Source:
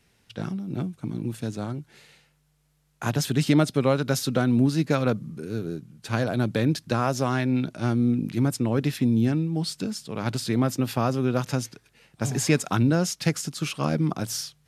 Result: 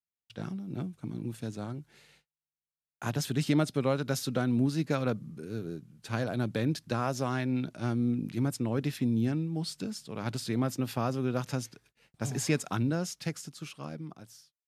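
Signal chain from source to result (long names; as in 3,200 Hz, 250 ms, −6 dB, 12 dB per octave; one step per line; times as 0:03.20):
fade-out on the ending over 2.22 s
noise gate −56 dBFS, range −36 dB
level −6.5 dB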